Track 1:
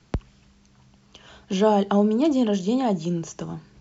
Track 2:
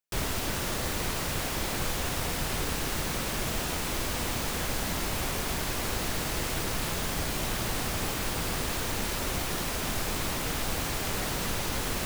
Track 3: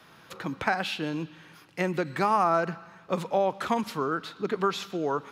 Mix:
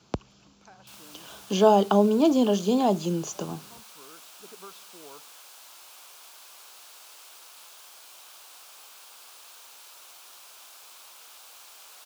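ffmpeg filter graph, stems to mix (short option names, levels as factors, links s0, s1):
-filter_complex "[0:a]volume=1.41,asplit=2[s0][s1];[1:a]highpass=1000,adelay=750,volume=0.211[s2];[2:a]volume=0.126[s3];[s1]apad=whole_len=234390[s4];[s3][s4]sidechaincompress=threshold=0.0251:ratio=8:attack=27:release=1100[s5];[s0][s2][s5]amix=inputs=3:normalize=0,highpass=f=310:p=1,equalizer=f=1900:w=2.9:g=-11.5"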